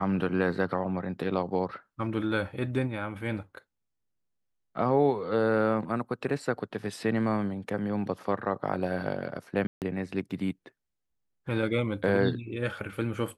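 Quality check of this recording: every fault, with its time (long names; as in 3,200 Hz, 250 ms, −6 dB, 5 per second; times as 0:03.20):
0:09.67–0:09.82: drop-out 148 ms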